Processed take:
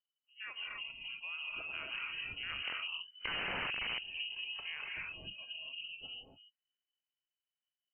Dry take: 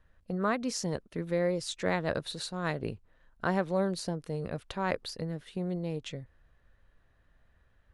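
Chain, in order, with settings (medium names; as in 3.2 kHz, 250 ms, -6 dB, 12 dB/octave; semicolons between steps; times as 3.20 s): sawtooth pitch modulation -8.5 st, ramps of 431 ms; Doppler pass-by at 3.14 s, 21 m/s, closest 6.7 m; gated-style reverb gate 300 ms rising, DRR -3 dB; spectral noise reduction 21 dB; integer overflow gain 26.5 dB; frequency inversion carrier 3 kHz; compression 2.5:1, threshold -47 dBFS, peak gain reduction 11 dB; trim +6 dB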